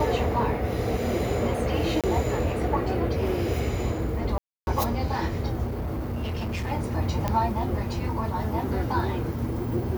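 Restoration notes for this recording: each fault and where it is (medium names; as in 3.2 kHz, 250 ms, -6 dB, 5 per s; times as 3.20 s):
2.01–2.04 s: dropout 27 ms
4.38–4.67 s: dropout 291 ms
5.66–6.72 s: clipped -26 dBFS
7.28 s: pop -12 dBFS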